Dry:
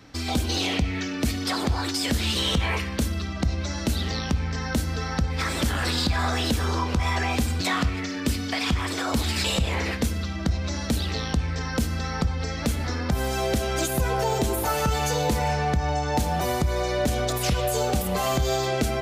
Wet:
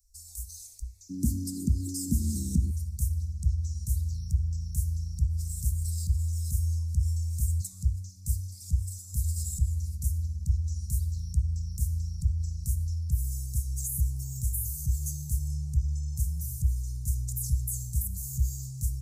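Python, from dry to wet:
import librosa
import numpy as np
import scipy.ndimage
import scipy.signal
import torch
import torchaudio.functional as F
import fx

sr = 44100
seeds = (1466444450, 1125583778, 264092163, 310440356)

y = fx.cheby2_bandstop(x, sr, low_hz=fx.steps((0.0, 120.0), (1.09, 570.0), (2.7, 290.0)), high_hz=3300.0, order=4, stop_db=50)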